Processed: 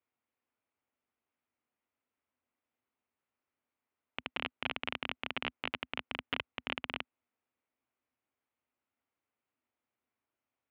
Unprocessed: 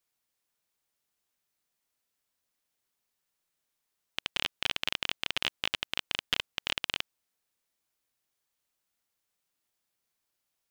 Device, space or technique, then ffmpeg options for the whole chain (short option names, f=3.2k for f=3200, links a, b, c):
bass cabinet: -af "highpass=f=63:w=0.5412,highpass=f=63:w=1.3066,equalizer=f=170:t=q:w=4:g=-10,equalizer=f=250:t=q:w=4:g=8,equalizer=f=1.7k:t=q:w=4:g=-5,lowpass=f=2.4k:w=0.5412,lowpass=f=2.4k:w=1.3066"